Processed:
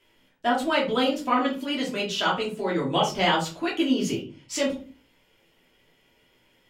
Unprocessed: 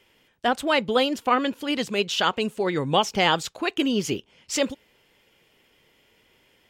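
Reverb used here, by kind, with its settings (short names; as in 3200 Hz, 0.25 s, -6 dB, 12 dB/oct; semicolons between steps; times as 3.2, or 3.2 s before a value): shoebox room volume 180 m³, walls furnished, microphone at 2.9 m; gain -8 dB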